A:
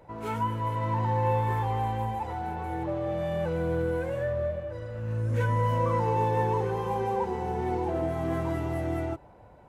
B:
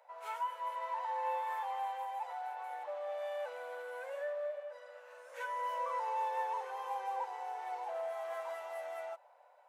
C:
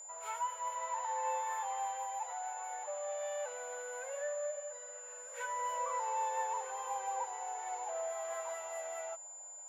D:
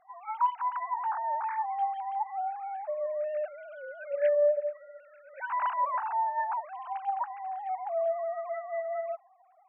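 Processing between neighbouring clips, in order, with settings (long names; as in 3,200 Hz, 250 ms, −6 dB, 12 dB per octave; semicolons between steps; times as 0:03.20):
Butterworth high-pass 560 Hz 48 dB per octave; level −6.5 dB
steady tone 7,100 Hz −47 dBFS
three sine waves on the formant tracks; level +7.5 dB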